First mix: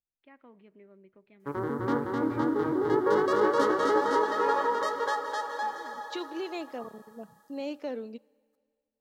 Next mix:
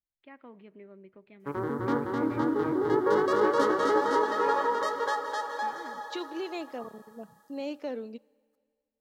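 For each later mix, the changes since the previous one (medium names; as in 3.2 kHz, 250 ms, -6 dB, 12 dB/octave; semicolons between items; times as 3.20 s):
first voice +5.0 dB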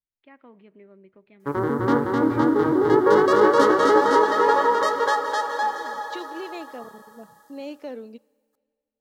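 background +8.0 dB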